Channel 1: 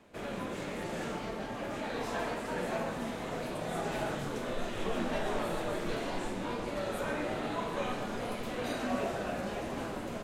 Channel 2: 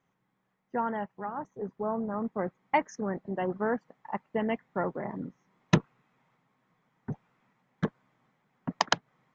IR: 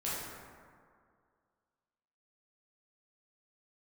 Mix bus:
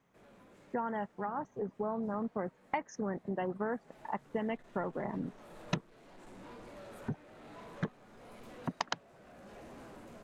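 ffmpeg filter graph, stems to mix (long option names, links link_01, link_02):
-filter_complex "[0:a]equalizer=frequency=3200:width=1.5:gain=-3.5,asoftclip=type=tanh:threshold=-35dB,volume=-10.5dB,afade=type=in:start_time=3.68:duration=0.68:silence=0.375837[link_01];[1:a]acompressor=threshold=-35dB:ratio=4,volume=2dB,asplit=2[link_02][link_03];[link_03]apad=whole_len=451278[link_04];[link_01][link_04]sidechaincompress=threshold=-45dB:ratio=3:attack=6.9:release=480[link_05];[link_05][link_02]amix=inputs=2:normalize=0"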